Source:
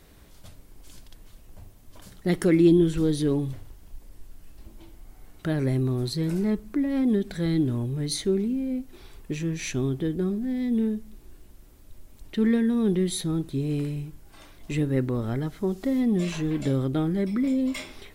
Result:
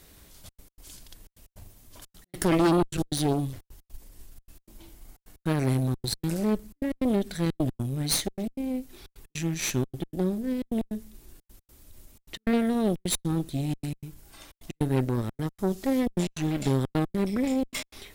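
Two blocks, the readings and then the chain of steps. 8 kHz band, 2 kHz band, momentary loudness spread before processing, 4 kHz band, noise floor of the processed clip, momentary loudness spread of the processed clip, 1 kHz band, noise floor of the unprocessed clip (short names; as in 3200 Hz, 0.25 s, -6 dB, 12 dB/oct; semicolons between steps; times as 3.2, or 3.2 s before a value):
+4.5 dB, 0.0 dB, 10 LU, +2.5 dB, -81 dBFS, 11 LU, +7.5 dB, -51 dBFS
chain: high shelf 3300 Hz +9 dB; step gate "xxxxx.x." 154 bpm -60 dB; added harmonics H 5 -20 dB, 6 -11 dB, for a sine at -8 dBFS; gain -5.5 dB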